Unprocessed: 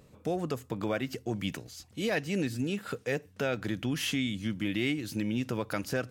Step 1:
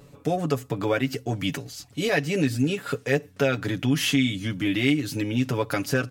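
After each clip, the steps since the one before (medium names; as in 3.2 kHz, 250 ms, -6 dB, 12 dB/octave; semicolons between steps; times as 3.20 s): comb 7.1 ms, depth 73%; trim +5.5 dB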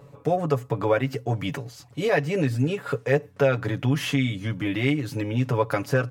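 ten-band graphic EQ 125 Hz +11 dB, 500 Hz +9 dB, 1 kHz +10 dB, 2 kHz +4 dB; trim -7.5 dB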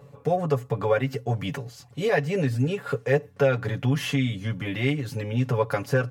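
comb of notches 320 Hz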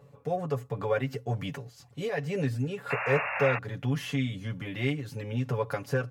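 painted sound noise, 2.90–3.59 s, 520–2800 Hz -26 dBFS; random flutter of the level, depth 55%; trim -3.5 dB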